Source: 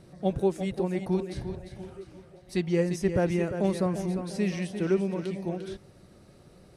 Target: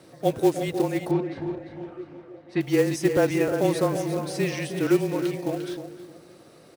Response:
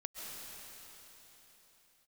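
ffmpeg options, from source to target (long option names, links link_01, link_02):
-filter_complex "[0:a]highpass=300,asplit=2[link_01][link_02];[link_02]adelay=309,lowpass=frequency=1100:poles=1,volume=-9dB,asplit=2[link_03][link_04];[link_04]adelay=309,lowpass=frequency=1100:poles=1,volume=0.3,asplit=2[link_05][link_06];[link_06]adelay=309,lowpass=frequency=1100:poles=1,volume=0.3[link_07];[link_01][link_03][link_05][link_07]amix=inputs=4:normalize=0,afreqshift=-27,acrusher=bits=5:mode=log:mix=0:aa=0.000001,asettb=1/sr,asplit=3[link_08][link_09][link_10];[link_08]atrim=end=1.114[link_11];[link_09]atrim=start=1.11:end=2.61,asetpts=PTS-STARTPTS,afade=type=in:duration=0.004:curve=qsin,afade=type=out:start_time=1.496:duration=0.004:curve=qsin,lowpass=2200[link_12];[link_10]atrim=start=2.606[link_13];[link_11][link_12]acrossfade=duration=0.004:curve1=hsin:curve2=qsin[link_14];[link_14][link_13]acrossfade=duration=0.004:curve1=qsin:curve2=hsin,volume=6.5dB"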